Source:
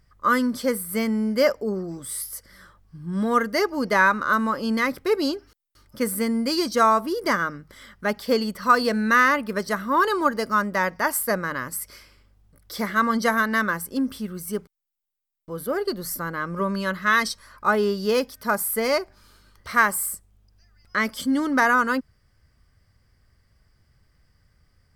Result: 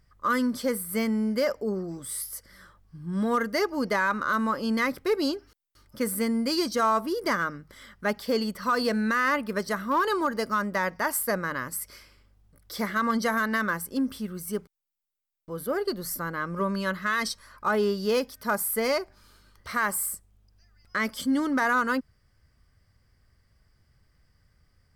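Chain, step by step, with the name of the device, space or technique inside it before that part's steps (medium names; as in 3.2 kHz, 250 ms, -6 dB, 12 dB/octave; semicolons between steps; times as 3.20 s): limiter into clipper (peak limiter -13.5 dBFS, peak gain reduction 8 dB; hard clipper -15 dBFS, distortion -31 dB); trim -2.5 dB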